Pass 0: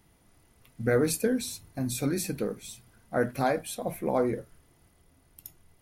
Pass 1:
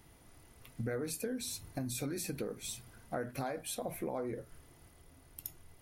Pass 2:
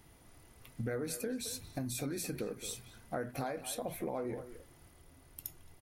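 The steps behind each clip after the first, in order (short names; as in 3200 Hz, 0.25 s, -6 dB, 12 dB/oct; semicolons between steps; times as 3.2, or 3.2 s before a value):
bell 190 Hz -6.5 dB 0.26 oct; in parallel at -1 dB: limiter -25 dBFS, peak gain reduction 10.5 dB; on the sum: compressor 6:1, threshold -33 dBFS, peak gain reduction 14.5 dB; gain -2.5 dB
speakerphone echo 0.22 s, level -11 dB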